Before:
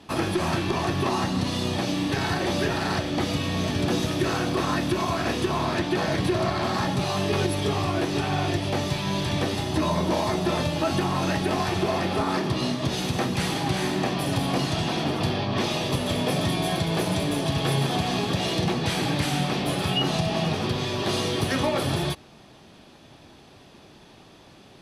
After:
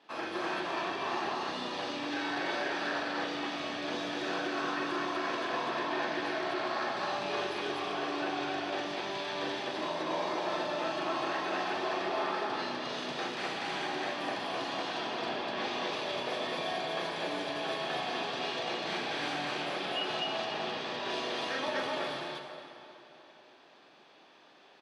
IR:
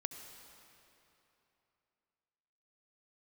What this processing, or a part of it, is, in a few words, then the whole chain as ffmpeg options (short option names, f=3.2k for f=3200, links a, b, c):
station announcement: -filter_complex "[0:a]highpass=460,lowpass=4.3k,equalizer=f=1.6k:t=o:w=0.29:g=4,aecho=1:1:40.82|247.8:0.708|1[a];[1:a]atrim=start_sample=2205[b];[a][b]afir=irnorm=-1:irlink=0,volume=-8dB"